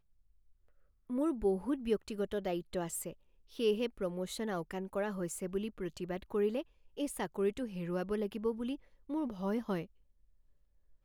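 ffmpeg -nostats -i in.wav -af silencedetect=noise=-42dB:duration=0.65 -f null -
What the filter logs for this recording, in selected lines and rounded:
silence_start: 0.00
silence_end: 1.10 | silence_duration: 1.10
silence_start: 9.83
silence_end: 11.04 | silence_duration: 1.21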